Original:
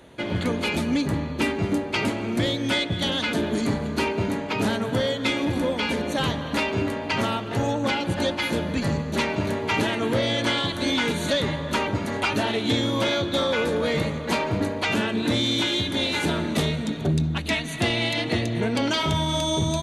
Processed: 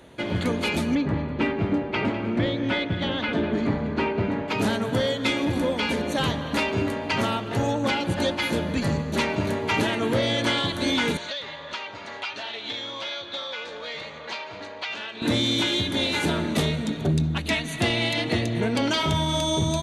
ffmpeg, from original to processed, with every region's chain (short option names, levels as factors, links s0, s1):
-filter_complex "[0:a]asettb=1/sr,asplit=3[s0][s1][s2];[s0]atrim=end=0.954[s3];[s1]atrim=start=0.95:end=4.48,asetpts=PTS-STARTPTS,afade=t=in:d=0.004:c=qsin,afade=t=out:st=3.526:d=0.004:c=qsin,lowpass=2600,aecho=1:1:201:0.211,atrim=end_sample=155673[s4];[s2]atrim=start=4.476[s5];[s3][s4]acrossfade=d=0.004:c1=hsin:c2=qsin[s6];[s6][s5]acrossfade=d=0.004:c1=qsin:c2=hsin,asettb=1/sr,asplit=3[s7][s8][s9];[s7]atrim=end=11.174[s10];[s8]atrim=start=11.17:end=15.22,asetpts=PTS-STARTPTS,afade=t=in:d=0.004:c=qsin,afade=t=out:st=4.046:d=0.004:c=qsin,lowpass=8100,acrossover=split=530 6100:gain=0.141 1 0.0708[s11][s12][s13];[s11][s12][s13]amix=inputs=3:normalize=0,acrossover=split=2800|6400[s14][s15][s16];[s14]acompressor=threshold=0.0158:ratio=4[s17];[s15]acompressor=threshold=0.0251:ratio=4[s18];[s16]acompressor=threshold=0.00112:ratio=4[s19];[s17][s18][s19]amix=inputs=3:normalize=0[s20];[s9]atrim=start=15.216[s21];[s10][s20]acrossfade=d=0.004:c1=hsin:c2=qsin[s22];[s22][s21]acrossfade=d=0.004:c1=qsin:c2=hsin"